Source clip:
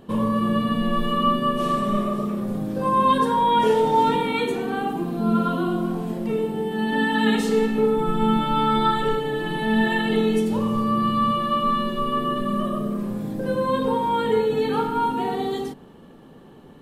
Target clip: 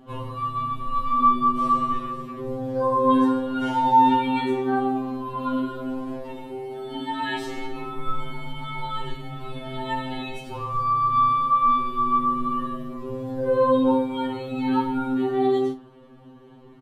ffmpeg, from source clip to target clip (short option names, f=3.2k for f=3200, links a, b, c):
-filter_complex "[0:a]highshelf=f=6k:g=-11.5,asplit=2[a][b];[b]adelay=46,volume=-12.5dB[c];[a][c]amix=inputs=2:normalize=0,afftfilt=real='re*2.45*eq(mod(b,6),0)':imag='im*2.45*eq(mod(b,6),0)':win_size=2048:overlap=0.75"